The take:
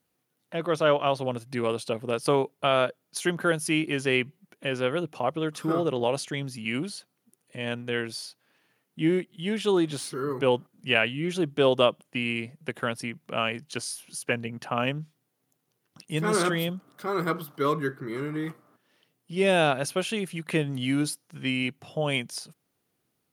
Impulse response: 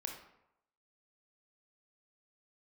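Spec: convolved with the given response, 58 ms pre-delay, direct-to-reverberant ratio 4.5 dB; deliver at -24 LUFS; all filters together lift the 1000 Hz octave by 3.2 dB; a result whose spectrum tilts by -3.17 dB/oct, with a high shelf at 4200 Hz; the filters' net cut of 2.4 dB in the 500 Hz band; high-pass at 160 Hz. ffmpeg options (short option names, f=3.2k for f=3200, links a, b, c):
-filter_complex "[0:a]highpass=160,equalizer=f=500:t=o:g=-4.5,equalizer=f=1k:t=o:g=5,highshelf=f=4.2k:g=7.5,asplit=2[a][b];[1:a]atrim=start_sample=2205,adelay=58[c];[b][c]afir=irnorm=-1:irlink=0,volume=-3.5dB[d];[a][d]amix=inputs=2:normalize=0,volume=2dB"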